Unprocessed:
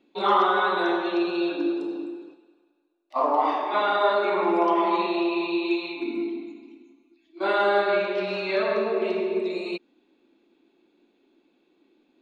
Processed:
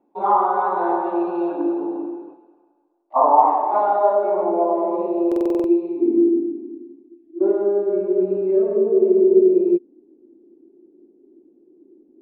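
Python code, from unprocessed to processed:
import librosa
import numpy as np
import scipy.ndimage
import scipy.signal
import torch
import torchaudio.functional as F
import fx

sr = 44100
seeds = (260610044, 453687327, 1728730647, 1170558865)

y = fx.rider(x, sr, range_db=4, speed_s=0.5)
y = fx.filter_sweep_lowpass(y, sr, from_hz=870.0, to_hz=370.0, start_s=3.54, end_s=6.43, q=3.7)
y = fx.buffer_glitch(y, sr, at_s=(5.27,), block=2048, repeats=7)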